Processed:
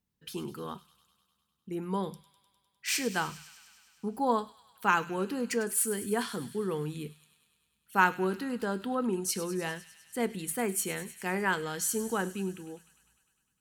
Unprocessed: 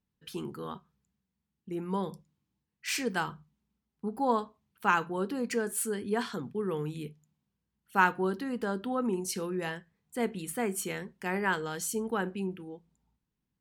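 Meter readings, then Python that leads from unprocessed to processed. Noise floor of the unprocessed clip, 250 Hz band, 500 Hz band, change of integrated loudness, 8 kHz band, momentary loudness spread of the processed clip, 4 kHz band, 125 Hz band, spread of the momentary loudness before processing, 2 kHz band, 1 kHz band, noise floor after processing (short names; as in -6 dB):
under -85 dBFS, 0.0 dB, 0.0 dB, +1.0 dB, +4.5 dB, 14 LU, +2.0 dB, 0.0 dB, 14 LU, +0.5 dB, 0.0 dB, -78 dBFS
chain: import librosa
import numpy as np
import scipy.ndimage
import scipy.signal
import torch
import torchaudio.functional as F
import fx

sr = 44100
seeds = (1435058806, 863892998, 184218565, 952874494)

p1 = fx.high_shelf(x, sr, hz=5200.0, db=5.5)
y = p1 + fx.echo_wet_highpass(p1, sr, ms=101, feedback_pct=74, hz=2500.0, wet_db=-13.0, dry=0)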